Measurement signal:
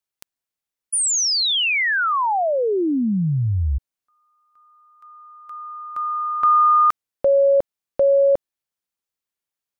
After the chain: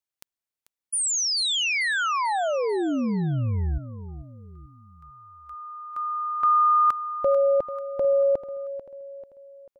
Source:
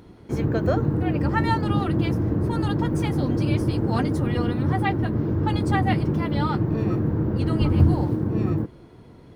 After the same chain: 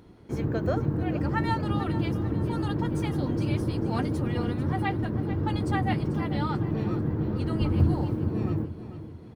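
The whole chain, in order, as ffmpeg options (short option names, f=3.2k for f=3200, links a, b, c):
-af "aecho=1:1:441|882|1323|1764:0.224|0.101|0.0453|0.0204,volume=-5dB"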